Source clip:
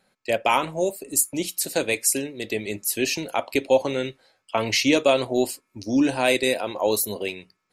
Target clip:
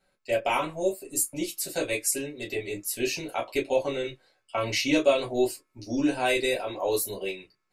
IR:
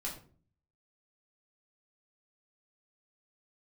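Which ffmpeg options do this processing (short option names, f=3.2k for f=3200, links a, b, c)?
-filter_complex "[1:a]atrim=start_sample=2205,atrim=end_sample=3969,asetrate=83790,aresample=44100[a];[0:a][a]afir=irnorm=-1:irlink=0"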